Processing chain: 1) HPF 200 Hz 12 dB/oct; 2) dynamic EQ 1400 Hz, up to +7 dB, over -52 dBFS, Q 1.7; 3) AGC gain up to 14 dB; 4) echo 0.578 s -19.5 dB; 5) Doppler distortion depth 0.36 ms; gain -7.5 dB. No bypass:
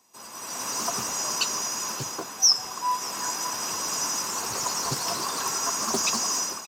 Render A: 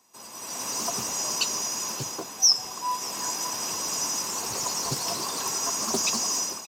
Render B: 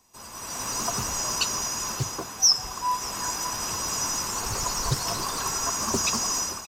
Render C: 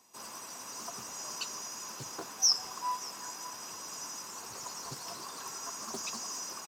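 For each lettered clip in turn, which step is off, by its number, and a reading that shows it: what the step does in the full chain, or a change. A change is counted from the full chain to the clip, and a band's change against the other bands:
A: 2, 2 kHz band -3.0 dB; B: 1, 125 Hz band +8.5 dB; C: 3, momentary loudness spread change +5 LU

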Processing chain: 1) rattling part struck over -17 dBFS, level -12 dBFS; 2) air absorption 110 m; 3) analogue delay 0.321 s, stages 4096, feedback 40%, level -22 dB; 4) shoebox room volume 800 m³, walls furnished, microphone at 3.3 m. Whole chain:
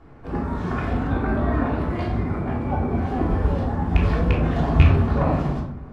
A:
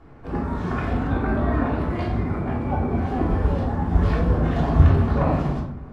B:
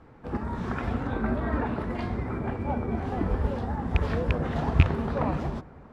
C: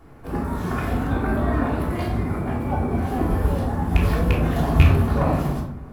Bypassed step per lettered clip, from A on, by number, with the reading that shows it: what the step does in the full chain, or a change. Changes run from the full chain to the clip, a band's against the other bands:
1, 4 kHz band -3.0 dB; 4, echo-to-direct 2.5 dB to -23.0 dB; 2, 4 kHz band +2.0 dB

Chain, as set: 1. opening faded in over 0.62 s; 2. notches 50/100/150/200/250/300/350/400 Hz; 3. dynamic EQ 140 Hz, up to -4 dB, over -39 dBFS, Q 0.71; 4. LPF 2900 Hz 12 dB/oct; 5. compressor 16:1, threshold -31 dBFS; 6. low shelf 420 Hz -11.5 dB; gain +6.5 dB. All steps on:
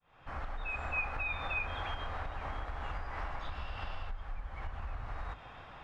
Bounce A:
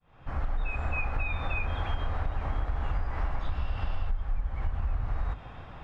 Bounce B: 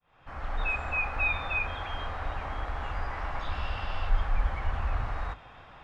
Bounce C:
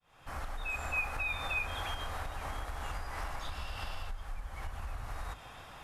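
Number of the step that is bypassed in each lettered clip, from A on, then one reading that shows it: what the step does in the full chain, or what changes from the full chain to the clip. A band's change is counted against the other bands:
6, 125 Hz band +9.0 dB; 5, mean gain reduction 6.5 dB; 4, 4 kHz band +4.5 dB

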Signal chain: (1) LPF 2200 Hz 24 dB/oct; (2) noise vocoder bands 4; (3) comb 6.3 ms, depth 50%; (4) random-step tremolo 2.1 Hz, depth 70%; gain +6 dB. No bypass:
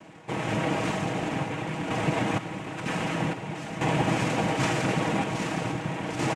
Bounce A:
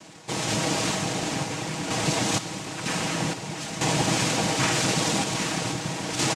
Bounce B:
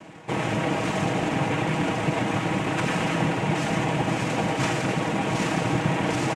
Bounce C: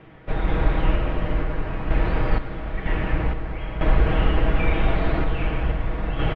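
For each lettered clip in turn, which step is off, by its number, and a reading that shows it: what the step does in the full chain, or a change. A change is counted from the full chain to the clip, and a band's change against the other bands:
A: 1, 8 kHz band +13.5 dB; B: 4, momentary loudness spread change -5 LU; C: 2, 125 Hz band +5.5 dB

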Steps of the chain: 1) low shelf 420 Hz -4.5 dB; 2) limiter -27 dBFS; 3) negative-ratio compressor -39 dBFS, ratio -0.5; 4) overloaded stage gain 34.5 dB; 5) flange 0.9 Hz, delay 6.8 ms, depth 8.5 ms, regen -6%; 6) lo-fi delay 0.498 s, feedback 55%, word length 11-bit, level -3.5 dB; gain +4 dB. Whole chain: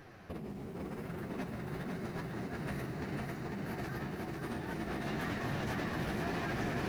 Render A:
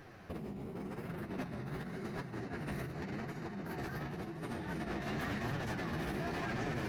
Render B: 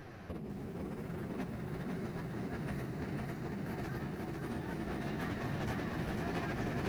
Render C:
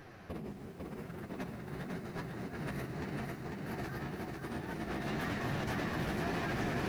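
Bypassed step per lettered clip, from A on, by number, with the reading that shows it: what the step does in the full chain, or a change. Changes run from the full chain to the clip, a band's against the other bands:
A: 6, loudness change -1.5 LU; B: 1, 125 Hz band +3.0 dB; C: 2, momentary loudness spread change +3 LU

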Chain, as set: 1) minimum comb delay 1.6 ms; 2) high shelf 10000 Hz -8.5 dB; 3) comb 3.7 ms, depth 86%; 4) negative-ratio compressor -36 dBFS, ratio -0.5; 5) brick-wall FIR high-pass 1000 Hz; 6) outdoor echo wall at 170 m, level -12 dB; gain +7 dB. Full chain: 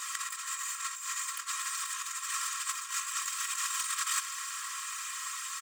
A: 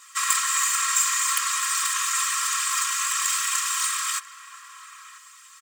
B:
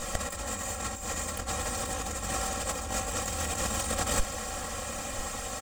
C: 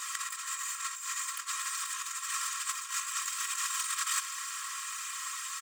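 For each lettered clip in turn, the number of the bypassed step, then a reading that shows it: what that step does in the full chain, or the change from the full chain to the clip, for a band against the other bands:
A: 4, crest factor change +1.5 dB; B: 5, 1 kHz band +3.5 dB; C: 6, echo-to-direct -15.0 dB to none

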